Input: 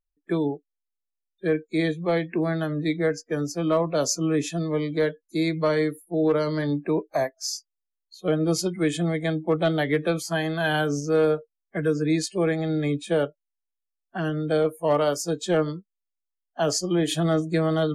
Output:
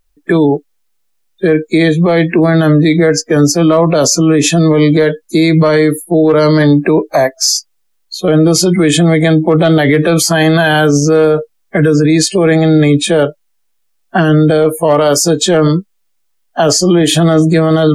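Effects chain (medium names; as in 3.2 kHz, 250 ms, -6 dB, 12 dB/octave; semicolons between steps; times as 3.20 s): loudness maximiser +24.5 dB; trim -1 dB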